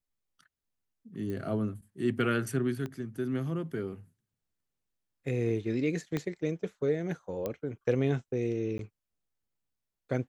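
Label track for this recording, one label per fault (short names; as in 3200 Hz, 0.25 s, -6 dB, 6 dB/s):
1.300000	1.300000	pop -27 dBFS
2.860000	2.860000	pop -25 dBFS
6.170000	6.170000	pop -19 dBFS
7.460000	7.460000	pop -20 dBFS
8.780000	8.790000	gap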